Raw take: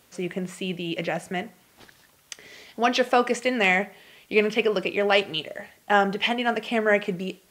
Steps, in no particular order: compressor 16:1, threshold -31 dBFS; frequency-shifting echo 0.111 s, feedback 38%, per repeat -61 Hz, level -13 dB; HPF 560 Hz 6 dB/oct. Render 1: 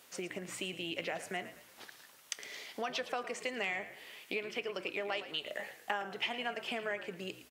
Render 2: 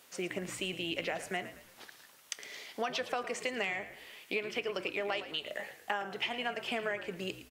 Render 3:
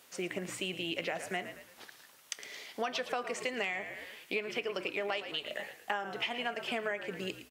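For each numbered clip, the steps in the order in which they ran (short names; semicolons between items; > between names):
compressor > frequency-shifting echo > HPF; HPF > compressor > frequency-shifting echo; frequency-shifting echo > HPF > compressor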